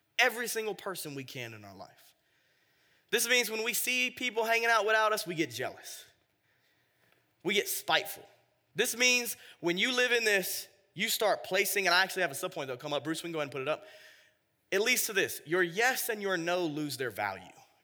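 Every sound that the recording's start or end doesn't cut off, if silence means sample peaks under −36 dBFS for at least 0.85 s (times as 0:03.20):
0:03.12–0:05.98
0:07.45–0:13.75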